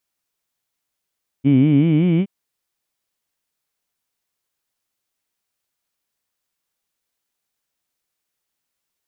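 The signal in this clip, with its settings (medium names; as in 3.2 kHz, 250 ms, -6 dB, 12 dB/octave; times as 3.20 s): formant-synthesis vowel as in heed, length 0.82 s, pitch 130 Hz, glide +6 st, vibrato depth 1.4 st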